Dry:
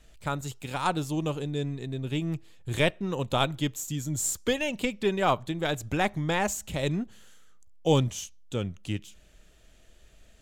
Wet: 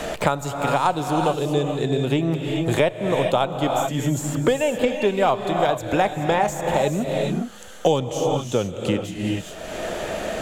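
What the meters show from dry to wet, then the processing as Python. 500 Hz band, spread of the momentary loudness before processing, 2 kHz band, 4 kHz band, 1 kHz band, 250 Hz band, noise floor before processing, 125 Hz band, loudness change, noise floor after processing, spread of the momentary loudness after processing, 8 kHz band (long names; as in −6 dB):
+10.0 dB, 9 LU, +4.5 dB, +4.0 dB, +9.5 dB, +7.0 dB, −56 dBFS, +5.0 dB, +7.0 dB, −36 dBFS, 6 LU, +0.5 dB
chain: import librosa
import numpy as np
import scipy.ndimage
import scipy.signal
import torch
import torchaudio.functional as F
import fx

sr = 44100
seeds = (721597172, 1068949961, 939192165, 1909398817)

y = fx.peak_eq(x, sr, hz=680.0, db=11.0, octaves=1.8)
y = fx.rev_gated(y, sr, seeds[0], gate_ms=450, shape='rising', drr_db=6.5)
y = fx.band_squash(y, sr, depth_pct=100)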